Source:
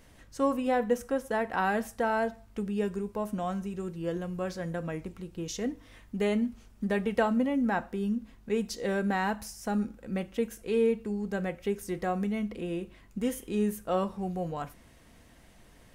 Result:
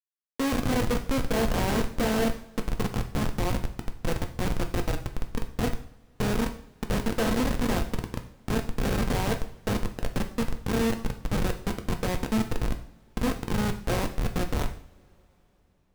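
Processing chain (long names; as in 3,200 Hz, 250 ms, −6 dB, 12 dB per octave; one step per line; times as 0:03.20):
compressor on every frequency bin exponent 0.4
comparator with hysteresis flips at −19.5 dBFS
coupled-rooms reverb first 0.52 s, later 4.4 s, from −28 dB, DRR 5 dB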